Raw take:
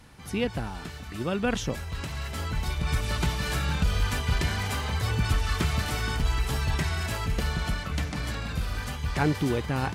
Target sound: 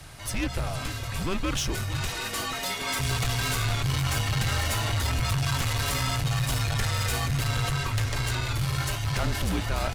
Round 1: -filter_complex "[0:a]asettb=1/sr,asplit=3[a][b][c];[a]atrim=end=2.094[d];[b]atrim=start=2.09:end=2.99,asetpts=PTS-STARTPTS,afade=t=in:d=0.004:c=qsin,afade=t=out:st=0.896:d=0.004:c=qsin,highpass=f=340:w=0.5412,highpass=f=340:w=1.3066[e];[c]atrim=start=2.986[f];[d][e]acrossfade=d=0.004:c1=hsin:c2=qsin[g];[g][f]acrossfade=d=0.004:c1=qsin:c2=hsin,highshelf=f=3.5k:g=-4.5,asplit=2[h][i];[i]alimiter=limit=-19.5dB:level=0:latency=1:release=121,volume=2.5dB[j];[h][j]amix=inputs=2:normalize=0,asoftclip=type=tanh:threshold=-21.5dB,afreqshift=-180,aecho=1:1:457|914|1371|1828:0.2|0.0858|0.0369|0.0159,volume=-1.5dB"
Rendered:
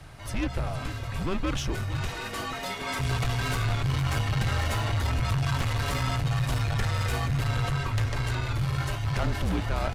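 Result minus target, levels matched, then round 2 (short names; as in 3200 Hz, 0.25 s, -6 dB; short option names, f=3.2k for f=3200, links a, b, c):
8000 Hz band -7.5 dB
-filter_complex "[0:a]asettb=1/sr,asplit=3[a][b][c];[a]atrim=end=2.094[d];[b]atrim=start=2.09:end=2.99,asetpts=PTS-STARTPTS,afade=t=in:d=0.004:c=qsin,afade=t=out:st=0.896:d=0.004:c=qsin,highpass=f=340:w=0.5412,highpass=f=340:w=1.3066[e];[c]atrim=start=2.986[f];[d][e]acrossfade=d=0.004:c1=hsin:c2=qsin[g];[g][f]acrossfade=d=0.004:c1=qsin:c2=hsin,highshelf=f=3.5k:g=7,asplit=2[h][i];[i]alimiter=limit=-19.5dB:level=0:latency=1:release=121,volume=2.5dB[j];[h][j]amix=inputs=2:normalize=0,asoftclip=type=tanh:threshold=-21.5dB,afreqshift=-180,aecho=1:1:457|914|1371|1828:0.2|0.0858|0.0369|0.0159,volume=-1.5dB"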